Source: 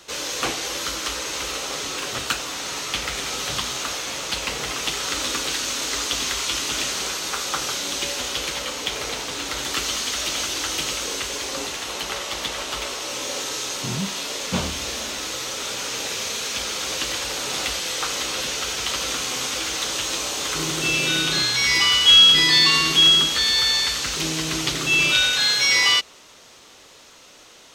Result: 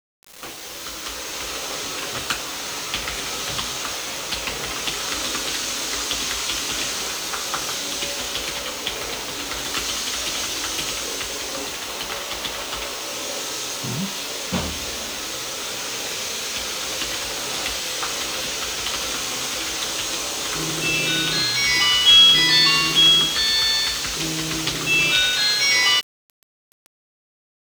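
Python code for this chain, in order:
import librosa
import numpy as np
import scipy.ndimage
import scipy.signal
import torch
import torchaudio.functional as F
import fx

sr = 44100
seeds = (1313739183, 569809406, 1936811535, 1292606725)

y = fx.fade_in_head(x, sr, length_s=1.68)
y = fx.quant_dither(y, sr, seeds[0], bits=6, dither='none')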